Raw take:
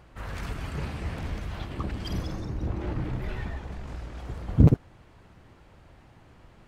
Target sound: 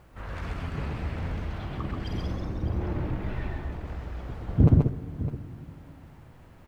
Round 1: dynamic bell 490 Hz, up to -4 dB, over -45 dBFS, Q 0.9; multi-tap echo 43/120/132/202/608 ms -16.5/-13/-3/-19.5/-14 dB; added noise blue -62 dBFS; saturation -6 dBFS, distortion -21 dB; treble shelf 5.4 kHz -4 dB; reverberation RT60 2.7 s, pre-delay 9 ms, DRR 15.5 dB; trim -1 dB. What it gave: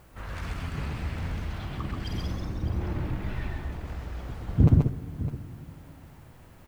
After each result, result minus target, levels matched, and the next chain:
8 kHz band +6.5 dB; 500 Hz band -2.5 dB
dynamic bell 490 Hz, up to -4 dB, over -45 dBFS, Q 0.9; multi-tap echo 43/120/132/202/608 ms -16.5/-13/-3/-19.5/-14 dB; added noise blue -62 dBFS; saturation -6 dBFS, distortion -21 dB; treble shelf 5.4 kHz -14 dB; reverberation RT60 2.7 s, pre-delay 9 ms, DRR 15.5 dB; trim -1 dB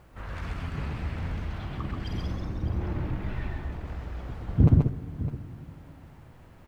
500 Hz band -2.5 dB
multi-tap echo 43/120/132/202/608 ms -16.5/-13/-3/-19.5/-14 dB; added noise blue -62 dBFS; saturation -6 dBFS, distortion -20 dB; treble shelf 5.4 kHz -14 dB; reverberation RT60 2.7 s, pre-delay 9 ms, DRR 15.5 dB; trim -1 dB

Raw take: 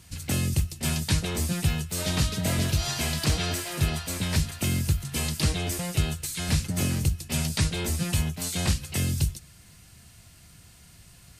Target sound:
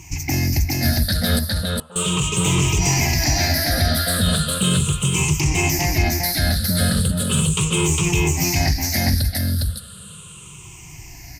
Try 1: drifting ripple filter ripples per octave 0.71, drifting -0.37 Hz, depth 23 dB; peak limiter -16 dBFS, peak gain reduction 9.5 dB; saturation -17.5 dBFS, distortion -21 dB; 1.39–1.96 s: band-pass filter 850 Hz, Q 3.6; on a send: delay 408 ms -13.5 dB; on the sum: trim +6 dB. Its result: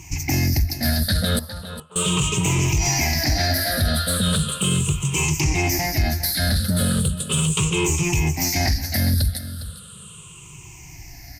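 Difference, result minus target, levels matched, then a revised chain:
echo-to-direct -11.5 dB
drifting ripple filter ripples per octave 0.71, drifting -0.37 Hz, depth 23 dB; peak limiter -16 dBFS, peak gain reduction 9.5 dB; saturation -17.5 dBFS, distortion -21 dB; 1.39–1.96 s: band-pass filter 850 Hz, Q 3.6; on a send: delay 408 ms -2 dB; on the sum: trim +6 dB

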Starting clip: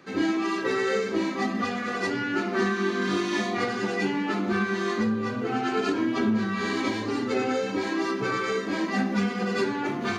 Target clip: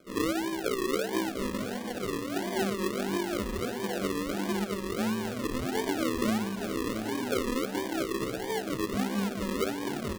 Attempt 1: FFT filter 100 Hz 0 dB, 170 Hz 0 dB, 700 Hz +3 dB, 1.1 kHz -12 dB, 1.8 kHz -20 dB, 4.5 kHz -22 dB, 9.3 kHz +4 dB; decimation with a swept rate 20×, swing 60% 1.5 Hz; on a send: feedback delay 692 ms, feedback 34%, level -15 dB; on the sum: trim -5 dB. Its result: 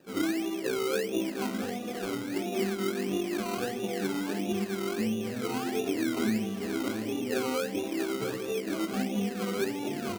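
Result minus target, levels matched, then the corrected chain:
decimation with a swept rate: distortion -11 dB
FFT filter 100 Hz 0 dB, 170 Hz 0 dB, 700 Hz +3 dB, 1.1 kHz -12 dB, 1.8 kHz -20 dB, 4.5 kHz -22 dB, 9.3 kHz +4 dB; decimation with a swept rate 46×, swing 60% 1.5 Hz; on a send: feedback delay 692 ms, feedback 34%, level -15 dB; on the sum: trim -5 dB

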